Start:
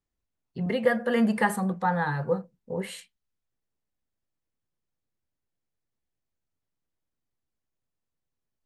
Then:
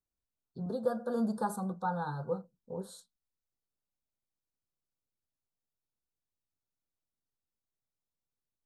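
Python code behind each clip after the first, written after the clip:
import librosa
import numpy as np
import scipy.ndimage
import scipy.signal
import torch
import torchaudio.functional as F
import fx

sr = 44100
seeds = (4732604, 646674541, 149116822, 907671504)

y = scipy.signal.sosfilt(scipy.signal.cheby1(4, 1.0, [1500.0, 3600.0], 'bandstop', fs=sr, output='sos'), x)
y = y * 10.0 ** (-7.5 / 20.0)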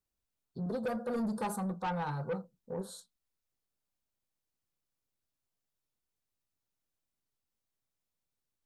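y = 10.0 ** (-32.5 / 20.0) * np.tanh(x / 10.0 ** (-32.5 / 20.0))
y = y * 10.0 ** (3.0 / 20.0)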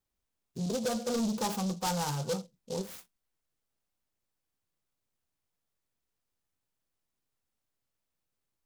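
y = fx.noise_mod_delay(x, sr, seeds[0], noise_hz=5100.0, depth_ms=0.096)
y = y * 10.0 ** (3.0 / 20.0)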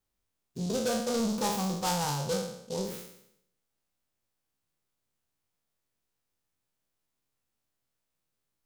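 y = fx.spec_trails(x, sr, decay_s=0.75)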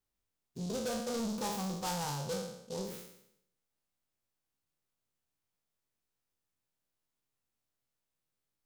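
y = 10.0 ** (-25.5 / 20.0) * np.tanh(x / 10.0 ** (-25.5 / 20.0))
y = y * 10.0 ** (-4.5 / 20.0)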